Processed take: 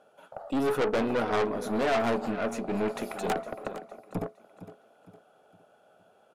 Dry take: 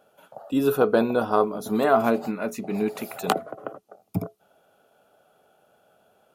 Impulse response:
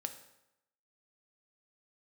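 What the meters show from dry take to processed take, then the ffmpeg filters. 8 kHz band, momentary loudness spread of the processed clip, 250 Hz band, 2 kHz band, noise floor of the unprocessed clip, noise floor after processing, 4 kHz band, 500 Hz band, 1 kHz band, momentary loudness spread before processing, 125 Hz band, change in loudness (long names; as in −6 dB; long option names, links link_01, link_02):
−4.5 dB, 13 LU, −5.5 dB, −2.0 dB, −65 dBFS, −63 dBFS, −2.0 dB, −5.0 dB, −5.0 dB, 13 LU, −5.0 dB, −5.5 dB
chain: -filter_complex "[0:a]lowpass=frequency=11000:width=0.5412,lowpass=frequency=11000:width=1.3066,asplit=2[link_01][link_02];[link_02]aeval=exprs='0.562*sin(PI/2*3.98*val(0)/0.562)':channel_layout=same,volume=-7dB[link_03];[link_01][link_03]amix=inputs=2:normalize=0,highshelf=frequency=2400:gain=-6,asplit=2[link_04][link_05];[link_05]aecho=0:1:460|920|1380|1840:0.178|0.0729|0.0299|0.0123[link_06];[link_04][link_06]amix=inputs=2:normalize=0,aeval=exprs='(tanh(5.62*val(0)+0.65)-tanh(0.65))/5.62':channel_layout=same,lowshelf=frequency=160:gain=-9.5,volume=-6.5dB"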